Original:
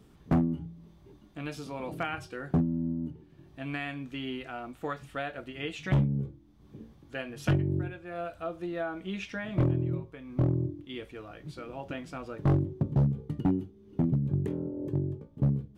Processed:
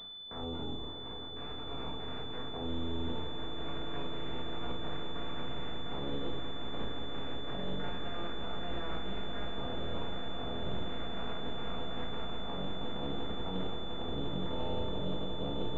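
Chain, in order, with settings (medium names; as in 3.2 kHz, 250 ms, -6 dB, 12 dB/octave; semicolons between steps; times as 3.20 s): spectral peaks clipped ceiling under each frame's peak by 29 dB; reverse; compression 8:1, threshold -41 dBFS, peak gain reduction 22 dB; reverse; peak limiter -37.5 dBFS, peak gain reduction 10.5 dB; distance through air 200 m; on a send: echo with a slow build-up 175 ms, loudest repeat 8, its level -11 dB; on the sum: simulated room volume 430 m³, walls furnished, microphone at 1.7 m; class-D stage that switches slowly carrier 3.5 kHz; trim +4.5 dB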